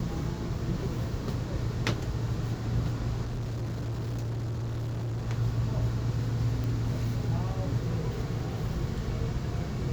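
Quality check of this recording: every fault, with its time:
3.24–5.27 s: clipped -30 dBFS
6.64 s: pop

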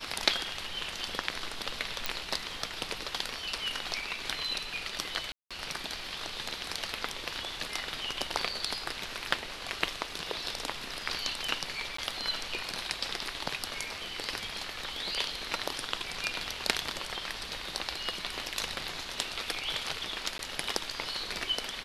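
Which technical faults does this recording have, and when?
2.06 s: pop
5.32–5.51 s: dropout 186 ms
11.97–11.98 s: dropout 14 ms
20.38–20.39 s: dropout 12 ms

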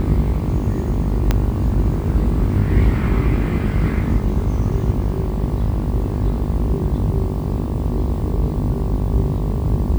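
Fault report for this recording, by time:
buzz 50 Hz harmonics 23 -23 dBFS
1.31 s: pop -4 dBFS

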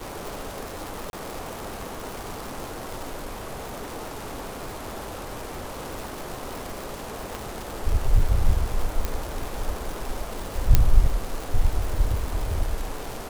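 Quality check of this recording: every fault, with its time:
crackle 290 per s -29 dBFS
1.10–1.13 s: dropout 31 ms
3.12–5.77 s: clipped -28.5 dBFS
7.35 s: pop
9.05 s: pop
10.75 s: pop -2 dBFS

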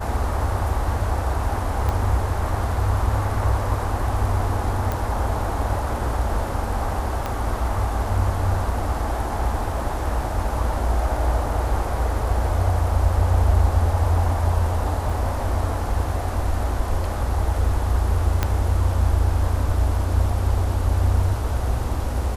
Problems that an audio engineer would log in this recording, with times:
1.89 s: pop -12 dBFS
4.92 s: pop
7.26 s: pop -12 dBFS
15.10 s: dropout 3.4 ms
18.43 s: pop -6 dBFS

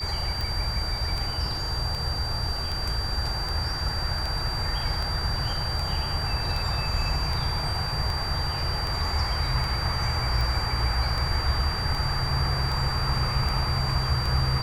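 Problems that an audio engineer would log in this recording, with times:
tick 78 rpm
whine 4.7 kHz -31 dBFS

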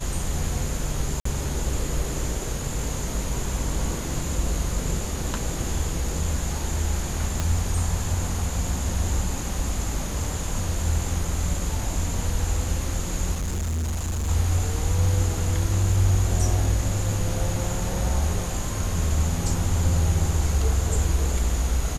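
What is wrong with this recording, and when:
1.20–1.25 s: dropout 54 ms
7.40 s: pop -11 dBFS
13.34–14.29 s: clipped -23.5 dBFS

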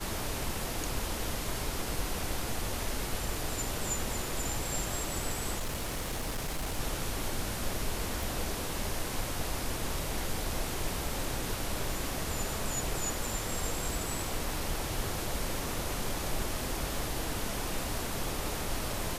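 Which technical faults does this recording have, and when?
5.58–6.80 s: clipped -30 dBFS
8.23 s: pop

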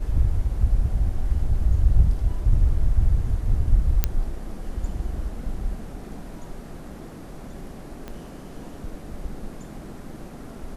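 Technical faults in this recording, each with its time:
4.04 s: pop -5 dBFS
8.08 s: pop -21 dBFS

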